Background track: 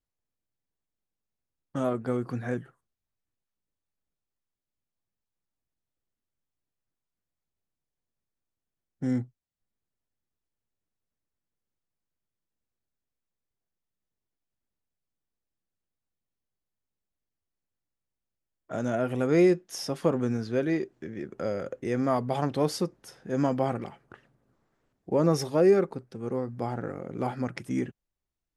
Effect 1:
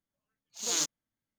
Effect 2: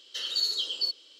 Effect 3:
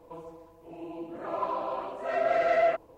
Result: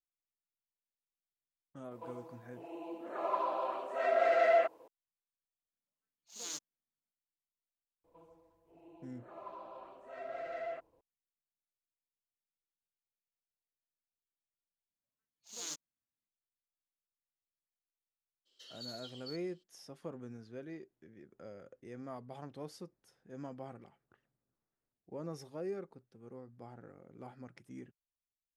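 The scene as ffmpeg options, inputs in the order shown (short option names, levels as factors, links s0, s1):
-filter_complex "[3:a]asplit=2[s0][s1];[1:a]asplit=2[s2][s3];[0:a]volume=0.106[s4];[s0]highpass=350[s5];[s2]highpass=130[s6];[2:a]equalizer=f=2300:w=0.5:g=-5.5[s7];[s4]asplit=2[s8][s9];[s8]atrim=end=14.904[s10];[s3]atrim=end=1.38,asetpts=PTS-STARTPTS,volume=0.224[s11];[s9]atrim=start=16.276[s12];[s5]atrim=end=2.97,asetpts=PTS-STARTPTS,volume=0.75,afade=t=in:d=0.004:c=hsin,afade=t=out:st=2.966:d=0.004:c=hsin,adelay=1910[s13];[s6]atrim=end=1.38,asetpts=PTS-STARTPTS,volume=0.224,afade=t=in:d=0.004:c=hsin,afade=t=out:st=1.376:d=0.004:c=hsin,adelay=252693S[s14];[s1]atrim=end=2.97,asetpts=PTS-STARTPTS,volume=0.141,afade=t=in:d=0.004:c=hsin,afade=t=out:st=2.966:d=0.004:c=hsin,adelay=8040[s15];[s7]atrim=end=1.19,asetpts=PTS-STARTPTS,volume=0.15,afade=t=in:d=0.02,afade=t=out:st=1.17:d=0.02,adelay=18450[s16];[s10][s11]acrossfade=d=0.004:c1=hsin:c2=hsin[s17];[s17][s12]acrossfade=d=0.004:c1=hsin:c2=hsin[s18];[s18][s13][s14][s15][s16]amix=inputs=5:normalize=0"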